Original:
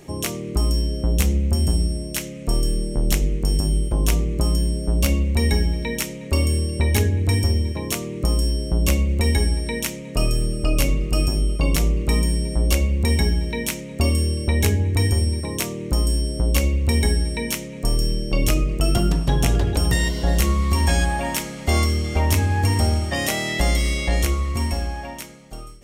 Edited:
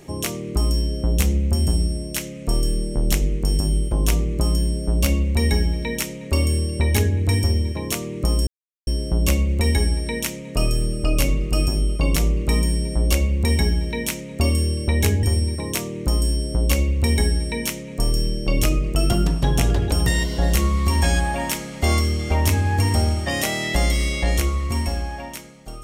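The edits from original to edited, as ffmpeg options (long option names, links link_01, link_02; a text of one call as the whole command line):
ffmpeg -i in.wav -filter_complex "[0:a]asplit=3[link_01][link_02][link_03];[link_01]atrim=end=8.47,asetpts=PTS-STARTPTS,afade=type=out:start_time=8.466:duration=0.004:curve=hsin,apad=pad_dur=0.4[link_04];[link_02]atrim=start=8.47:end=14.832,asetpts=PTS-STARTPTS,afade=type=in:duration=0.004:curve=hsin[link_05];[link_03]atrim=start=15.078[link_06];[link_04][link_05]concat=n=2:v=0:a=1[link_07];[link_07][link_06]acrossfade=duration=0.004:curve1=hsin:curve2=hsin" out.wav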